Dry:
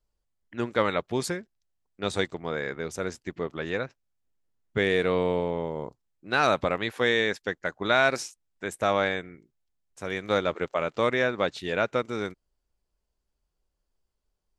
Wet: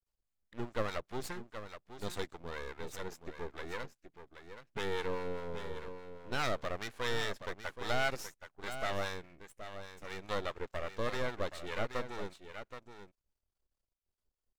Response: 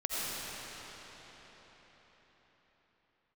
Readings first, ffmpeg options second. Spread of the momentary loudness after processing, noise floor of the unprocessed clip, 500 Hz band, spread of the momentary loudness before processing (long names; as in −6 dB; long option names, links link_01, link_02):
14 LU, −80 dBFS, −12.5 dB, 12 LU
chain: -filter_complex "[0:a]aeval=exprs='max(val(0),0)':channel_layout=same,aecho=1:1:774:0.316,acrossover=split=720[link_01][link_02];[link_01]aeval=exprs='val(0)*(1-0.5/2+0.5/2*cos(2*PI*4.9*n/s))':channel_layout=same[link_03];[link_02]aeval=exprs='val(0)*(1-0.5/2-0.5/2*cos(2*PI*4.9*n/s))':channel_layout=same[link_04];[link_03][link_04]amix=inputs=2:normalize=0,volume=-3.5dB"